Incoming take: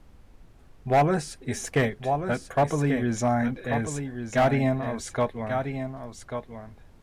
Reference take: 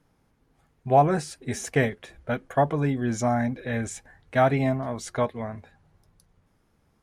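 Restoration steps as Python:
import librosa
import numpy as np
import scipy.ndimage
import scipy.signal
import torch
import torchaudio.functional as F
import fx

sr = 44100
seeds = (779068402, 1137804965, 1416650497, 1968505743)

y = fx.fix_declip(x, sr, threshold_db=-15.0)
y = fx.noise_reduce(y, sr, print_start_s=0.2, print_end_s=0.7, reduce_db=16.0)
y = fx.fix_echo_inverse(y, sr, delay_ms=1139, level_db=-8.0)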